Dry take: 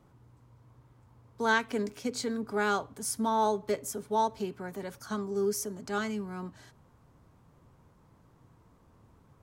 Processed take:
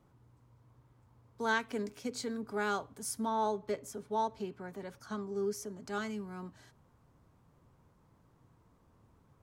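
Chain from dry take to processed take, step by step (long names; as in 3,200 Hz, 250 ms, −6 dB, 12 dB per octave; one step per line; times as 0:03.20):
0:03.25–0:05.82: high-shelf EQ 7,800 Hz −10 dB
level −5 dB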